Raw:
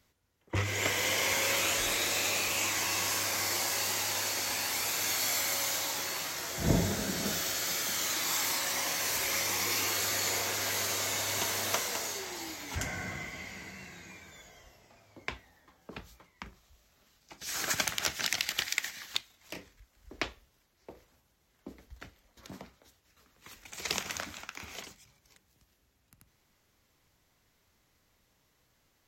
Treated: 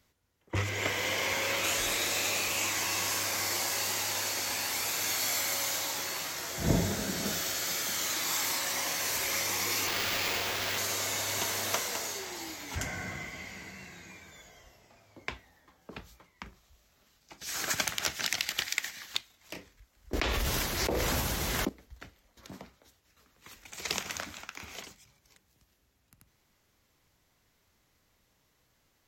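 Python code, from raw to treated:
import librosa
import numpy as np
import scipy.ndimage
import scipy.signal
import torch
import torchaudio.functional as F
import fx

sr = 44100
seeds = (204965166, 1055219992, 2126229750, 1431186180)

y = fx.peak_eq(x, sr, hz=9900.0, db=-7.5, octaves=1.5, at=(0.69, 1.64))
y = fx.sample_hold(y, sr, seeds[0], rate_hz=9400.0, jitter_pct=0, at=(9.87, 10.78))
y = fx.env_flatten(y, sr, amount_pct=100, at=(20.13, 21.69))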